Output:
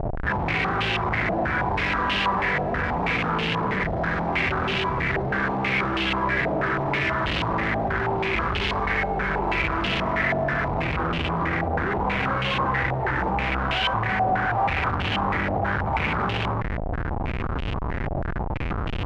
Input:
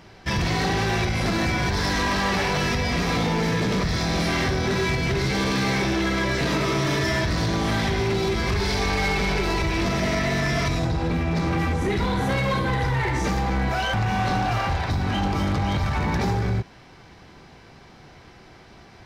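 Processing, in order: Schmitt trigger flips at -41.5 dBFS; stepped low-pass 6.2 Hz 710–2900 Hz; gain -3 dB

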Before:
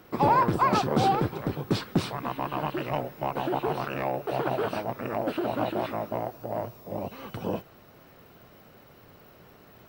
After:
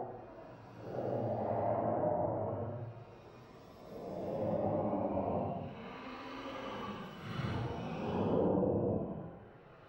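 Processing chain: treble ducked by the level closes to 400 Hz, closed at -24 dBFS; Paulstretch 7.1×, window 0.10 s, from 6.3; gain -2.5 dB

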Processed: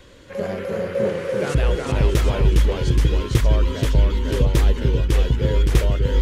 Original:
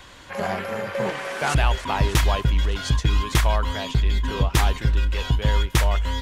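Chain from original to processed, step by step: resonant low shelf 630 Hz +6.5 dB, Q 3; echoes that change speed 0.281 s, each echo -1 st, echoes 2; gain -5.5 dB

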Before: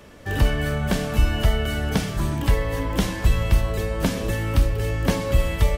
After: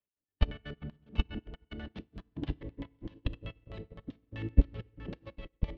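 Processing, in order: LPF 4600 Hz 12 dB/oct; level quantiser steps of 13 dB; delay with a stepping band-pass 0.207 s, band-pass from 160 Hz, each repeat 0.7 oct, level -3.5 dB; step gate "x.x..xx." 184 bpm -24 dB; LFO low-pass square 7.8 Hz 350–3500 Hz; FDN reverb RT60 1.9 s, low-frequency decay 1.25×, high-frequency decay 0.55×, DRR 9.5 dB; upward expander 2.5:1, over -46 dBFS

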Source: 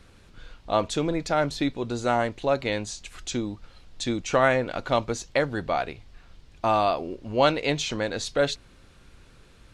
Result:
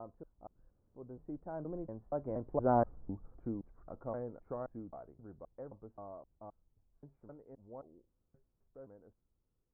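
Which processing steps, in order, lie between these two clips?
slices in reverse order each 0.249 s, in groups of 4; Doppler pass-by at 2.84, 19 m/s, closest 4.7 m; Bessel low-pass 700 Hz, order 8; gain -1 dB

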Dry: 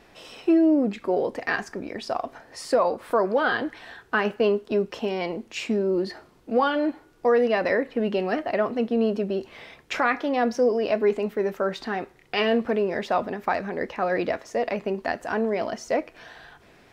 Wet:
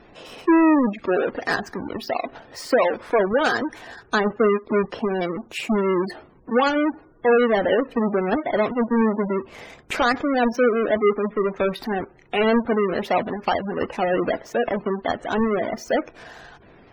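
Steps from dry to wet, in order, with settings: half-waves squared off; spectral gate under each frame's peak -20 dB strong

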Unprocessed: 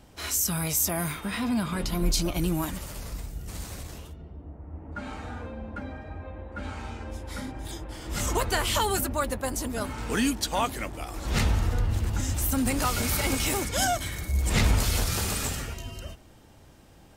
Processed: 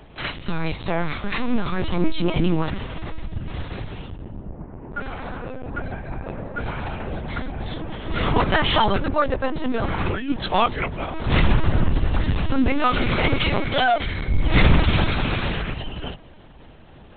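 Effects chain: 4.65–5.67 HPF 100 Hz 24 dB/oct; 9.63–10.3 negative-ratio compressor -31 dBFS, ratio -1; LPC vocoder at 8 kHz pitch kept; gain +8 dB

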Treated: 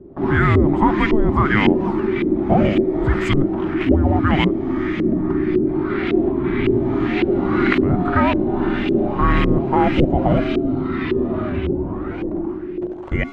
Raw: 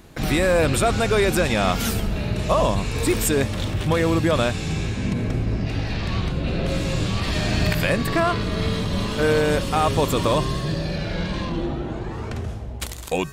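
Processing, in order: frequency shift -420 Hz; LFO low-pass saw up 1.8 Hz 390–2700 Hz; gain +3 dB

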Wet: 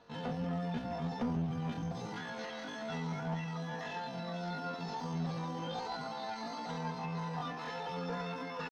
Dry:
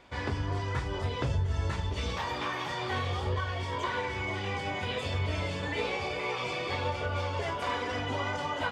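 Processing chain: HPF 98 Hz 6 dB/oct; bell 1100 Hz -12 dB 2 oct; notches 60/120/180/240/300/360/420/480 Hz; comb 7.4 ms, depth 62%; in parallel at -10 dB: wrapped overs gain 39.5 dB; on the sum: small resonant body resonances 470/770 Hz, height 7 dB, ringing for 70 ms; pitch shift +10 st; one-sided clip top -33 dBFS; air absorption 250 m

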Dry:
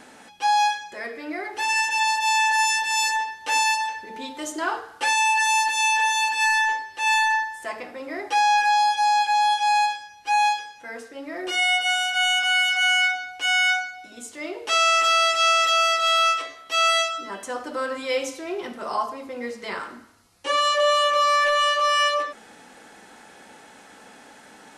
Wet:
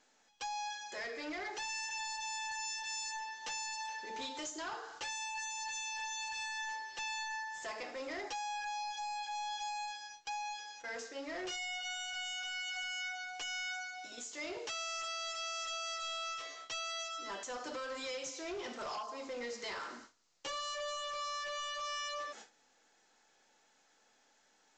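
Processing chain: gate with hold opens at -33 dBFS; tone controls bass -11 dB, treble +11 dB; compressor 12:1, threshold -30 dBFS, peak gain reduction 17 dB; overloaded stage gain 32.5 dB; gain -5 dB; µ-law 128 kbps 16000 Hz

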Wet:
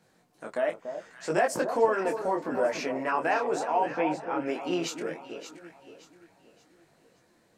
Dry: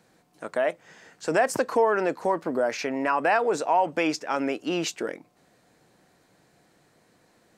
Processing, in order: 3.94–4.46 air absorption 410 m; echo with dull and thin repeats by turns 0.287 s, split 1100 Hz, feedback 59%, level -7.5 dB; detuned doubles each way 25 cents

